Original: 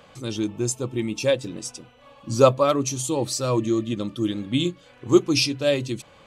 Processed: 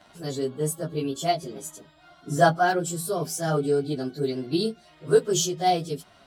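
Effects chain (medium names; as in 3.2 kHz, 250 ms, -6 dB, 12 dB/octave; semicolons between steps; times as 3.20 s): frequency-domain pitch shifter +4 st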